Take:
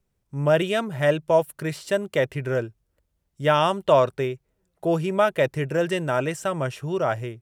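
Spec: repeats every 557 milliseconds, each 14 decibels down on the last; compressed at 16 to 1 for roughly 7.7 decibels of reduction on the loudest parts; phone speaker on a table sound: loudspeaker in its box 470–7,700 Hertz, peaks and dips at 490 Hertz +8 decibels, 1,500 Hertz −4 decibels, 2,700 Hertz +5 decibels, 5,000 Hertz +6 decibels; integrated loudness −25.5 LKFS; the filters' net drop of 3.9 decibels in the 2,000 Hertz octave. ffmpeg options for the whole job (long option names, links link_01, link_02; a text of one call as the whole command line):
ffmpeg -i in.wav -af "equalizer=frequency=2000:width_type=o:gain=-5,acompressor=threshold=-20dB:ratio=16,highpass=frequency=470:width=0.5412,highpass=frequency=470:width=1.3066,equalizer=frequency=490:width_type=q:width=4:gain=8,equalizer=frequency=1500:width_type=q:width=4:gain=-4,equalizer=frequency=2700:width_type=q:width=4:gain=5,equalizer=frequency=5000:width_type=q:width=4:gain=6,lowpass=frequency=7700:width=0.5412,lowpass=frequency=7700:width=1.3066,aecho=1:1:557|1114:0.2|0.0399,volume=1.5dB" out.wav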